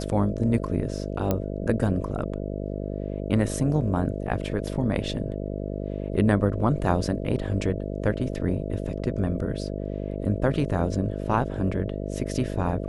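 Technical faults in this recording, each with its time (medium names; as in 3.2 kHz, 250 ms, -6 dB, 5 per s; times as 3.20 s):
buzz 50 Hz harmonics 13 -31 dBFS
1.31 s: pop -11 dBFS
8.33 s: dropout 3.8 ms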